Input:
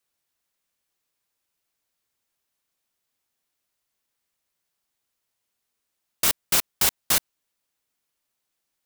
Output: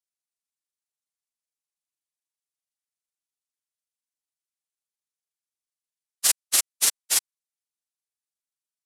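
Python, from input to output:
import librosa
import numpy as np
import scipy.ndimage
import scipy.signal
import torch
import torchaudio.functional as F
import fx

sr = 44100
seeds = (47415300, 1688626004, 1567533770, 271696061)

y = fx.pitch_heads(x, sr, semitones=-11.5)
y = fx.riaa(y, sr, side='recording')
y = fx.upward_expand(y, sr, threshold_db=-21.0, expansion=2.5)
y = y * librosa.db_to_amplitude(-6.5)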